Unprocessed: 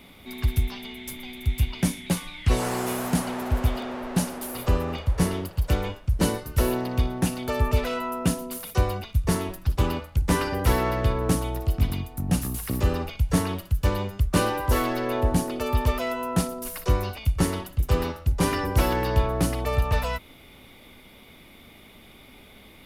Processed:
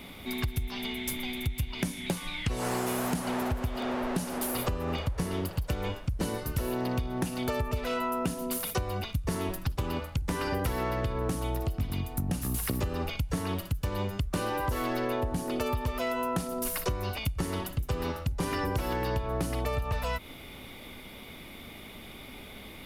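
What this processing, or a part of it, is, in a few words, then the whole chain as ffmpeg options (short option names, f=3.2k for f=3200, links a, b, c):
serial compression, peaks first: -af "acompressor=threshold=-27dB:ratio=6,acompressor=threshold=-32dB:ratio=2.5,volume=4dB"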